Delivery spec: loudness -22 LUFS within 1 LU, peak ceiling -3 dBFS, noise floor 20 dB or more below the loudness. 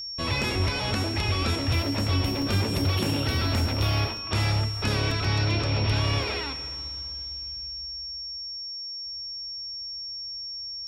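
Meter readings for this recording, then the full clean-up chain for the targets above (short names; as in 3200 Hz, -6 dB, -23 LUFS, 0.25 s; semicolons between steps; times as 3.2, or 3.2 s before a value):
dropouts 5; longest dropout 2.1 ms; steady tone 5500 Hz; tone level -33 dBFS; loudness -27.0 LUFS; peak -15.5 dBFS; loudness target -22.0 LUFS
-> interpolate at 0.42/2.42/4.17/5.11/6.23, 2.1 ms; notch 5500 Hz, Q 30; gain +5 dB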